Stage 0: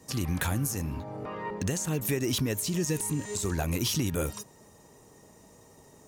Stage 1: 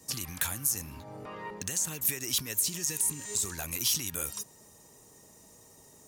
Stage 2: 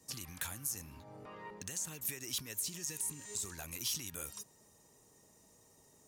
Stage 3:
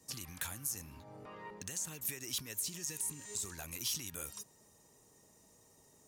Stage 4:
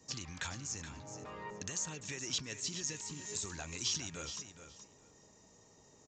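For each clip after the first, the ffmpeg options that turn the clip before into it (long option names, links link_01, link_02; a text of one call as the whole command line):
ffmpeg -i in.wav -filter_complex "[0:a]highshelf=frequency=4100:gain=11.5,acrossover=split=880[link_01][link_02];[link_01]acompressor=threshold=-36dB:ratio=6[link_03];[link_03][link_02]amix=inputs=2:normalize=0,volume=-4.5dB" out.wav
ffmpeg -i in.wav -af "highshelf=frequency=11000:gain=-4,volume=-8dB" out.wav
ffmpeg -i in.wav -af anull out.wav
ffmpeg -i in.wav -af "aecho=1:1:422|844:0.299|0.0478,aresample=16000,aresample=44100,volume=3dB" out.wav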